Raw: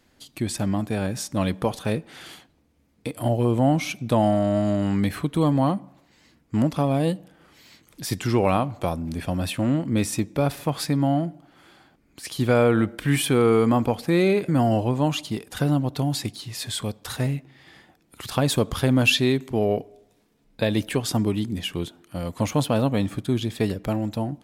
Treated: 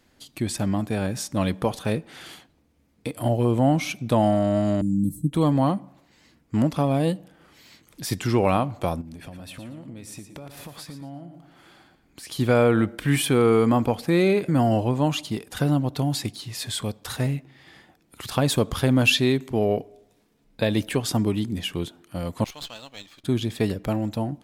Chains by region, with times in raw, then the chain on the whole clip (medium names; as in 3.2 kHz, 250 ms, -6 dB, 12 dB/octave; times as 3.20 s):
4.81–5.33 s: Chebyshev band-stop 260–8100 Hz, order 3 + comb 6.4 ms, depth 71%
9.01–12.31 s: compression 12:1, threshold -36 dBFS + feedback delay 115 ms, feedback 25%, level -10 dB
22.44–23.24 s: band-pass filter 4.1 kHz, Q 1.6 + sliding maximum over 3 samples
whole clip: none